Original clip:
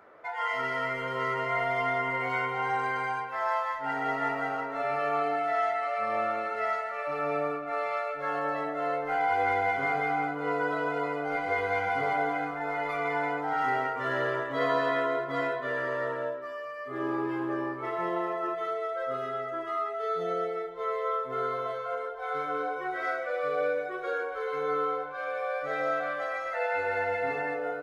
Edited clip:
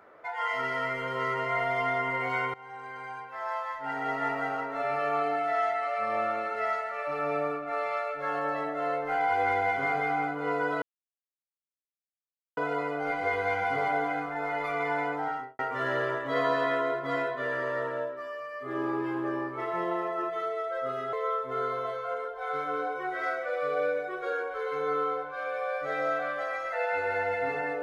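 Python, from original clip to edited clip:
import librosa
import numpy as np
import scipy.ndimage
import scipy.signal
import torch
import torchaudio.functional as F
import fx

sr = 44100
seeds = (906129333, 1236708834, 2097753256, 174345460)

y = fx.studio_fade_out(x, sr, start_s=13.42, length_s=0.42)
y = fx.edit(y, sr, fx.fade_in_from(start_s=2.54, length_s=1.82, floor_db=-20.0),
    fx.insert_silence(at_s=10.82, length_s=1.75),
    fx.cut(start_s=19.38, length_s=1.56), tone=tone)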